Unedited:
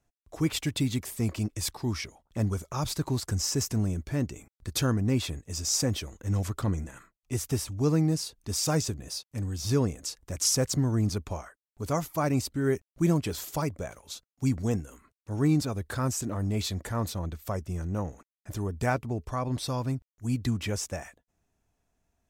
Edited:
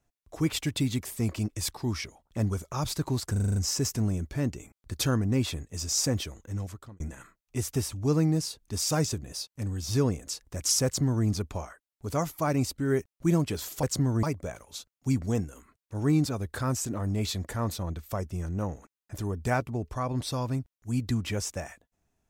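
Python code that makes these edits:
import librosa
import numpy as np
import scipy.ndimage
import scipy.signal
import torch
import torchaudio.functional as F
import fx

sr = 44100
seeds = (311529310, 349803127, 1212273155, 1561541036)

y = fx.edit(x, sr, fx.stutter(start_s=3.32, slice_s=0.04, count=7),
    fx.fade_out_span(start_s=5.95, length_s=0.81),
    fx.duplicate(start_s=10.61, length_s=0.4, to_s=13.59), tone=tone)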